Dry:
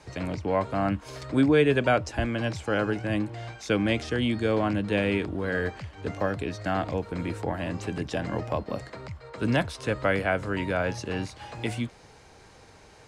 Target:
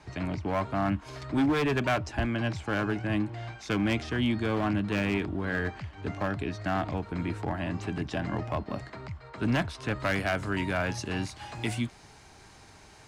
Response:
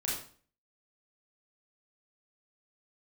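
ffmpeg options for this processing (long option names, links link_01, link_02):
-af "asetnsamples=nb_out_samples=441:pad=0,asendcmd='10 highshelf g 4',highshelf=frequency=6000:gain=-10,asoftclip=type=hard:threshold=-20.5dB,equalizer=frequency=500:width_type=o:width=0.29:gain=-12"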